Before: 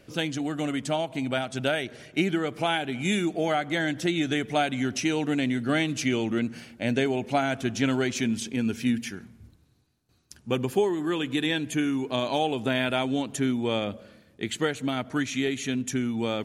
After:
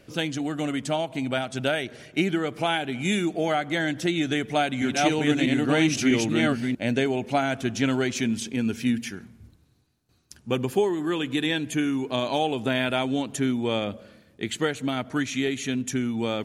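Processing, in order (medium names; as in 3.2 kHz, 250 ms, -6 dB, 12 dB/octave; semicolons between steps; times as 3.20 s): 4.17–6.75 s: chunks repeated in reverse 646 ms, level -0.5 dB; trim +1 dB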